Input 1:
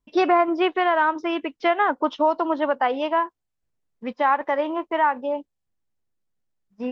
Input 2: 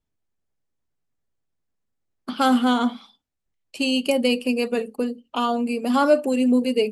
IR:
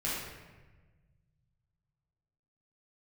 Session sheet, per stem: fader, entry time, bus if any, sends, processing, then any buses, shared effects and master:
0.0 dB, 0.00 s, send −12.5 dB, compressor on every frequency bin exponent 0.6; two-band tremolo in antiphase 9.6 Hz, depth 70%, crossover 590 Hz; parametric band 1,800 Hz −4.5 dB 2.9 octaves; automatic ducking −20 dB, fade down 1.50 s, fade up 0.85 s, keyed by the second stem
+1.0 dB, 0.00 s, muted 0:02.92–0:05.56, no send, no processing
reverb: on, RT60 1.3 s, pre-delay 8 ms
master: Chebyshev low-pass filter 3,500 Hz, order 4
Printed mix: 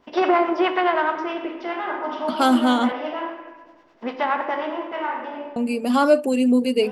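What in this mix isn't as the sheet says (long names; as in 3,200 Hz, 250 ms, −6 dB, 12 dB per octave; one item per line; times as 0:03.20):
stem 1: missing parametric band 1,800 Hz −4.5 dB 2.9 octaves
master: missing Chebyshev low-pass filter 3,500 Hz, order 4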